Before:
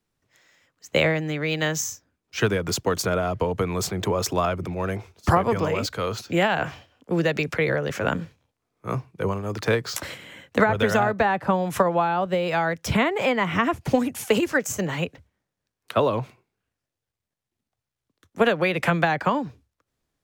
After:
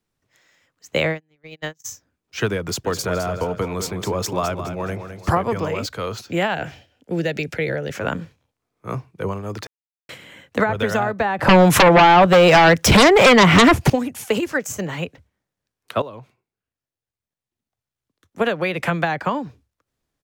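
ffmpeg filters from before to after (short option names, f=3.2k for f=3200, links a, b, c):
-filter_complex "[0:a]asplit=3[a][b][c];[a]afade=t=out:st=0.98:d=0.02[d];[b]agate=range=-40dB:threshold=-23dB:ratio=16:release=100:detection=peak,afade=t=in:st=0.98:d=0.02,afade=t=out:st=1.84:d=0.02[e];[c]afade=t=in:st=1.84:d=0.02[f];[d][e][f]amix=inputs=3:normalize=0,asplit=3[g][h][i];[g]afade=t=out:st=2.84:d=0.02[j];[h]aecho=1:1:210|420|630|840:0.355|0.128|0.046|0.0166,afade=t=in:st=2.84:d=0.02,afade=t=out:st=5.35:d=0.02[k];[i]afade=t=in:st=5.35:d=0.02[l];[j][k][l]amix=inputs=3:normalize=0,asettb=1/sr,asplit=3[m][n][o];[m]atrim=end=6.544[p];[n]atrim=start=6.54:end=7.95,asetpts=PTS-STARTPTS,afade=t=in:d=0.004:c=qsin,afade=t=out:st=1.406:d=0.004:c=qsin,equalizer=f=1.1k:w=3.6:g=-14.5[q];[o]atrim=start=7.946[r];[p][q]acrossfade=d=0.004:c1=hsin:c2=qsin[s];[s][r]acrossfade=d=0.004:c1=qsin:c2=hsin,asettb=1/sr,asplit=3[t][u][v];[t]atrim=end=11.394[w];[u]atrim=start=11.39:end=13.9,asetpts=PTS-STARTPTS,afade=t=in:d=0.004:c=qsin,afade=t=out:st=2.506:d=0.004:c=qsin,aeval=exprs='0.447*sin(PI/2*3.98*val(0)/0.447)':c=same[x];[v]atrim=start=13.896[y];[w][x]acrossfade=d=0.004:c1=hsin:c2=qsin[z];[z][y]acrossfade=d=0.004:c1=qsin:c2=hsin,asplit=4[aa][ab][ac][ad];[aa]atrim=end=9.67,asetpts=PTS-STARTPTS,afade=t=out:st=9.666:d=0.004:c=hsin[ae];[ab]atrim=start=9.67:end=10.09,asetpts=PTS-STARTPTS,volume=0[af];[ac]atrim=start=10.09:end=16.02,asetpts=PTS-STARTPTS,afade=t=in:d=0.004:c=hsin,afade=t=out:st=5.926:d=0.004:c=hsin:silence=0.199526[ag];[ad]atrim=start=16.02,asetpts=PTS-STARTPTS,afade=t=in:d=2.68:silence=0.199526[ah];[ae][af][ag][ah]concat=n=4:v=0:a=1"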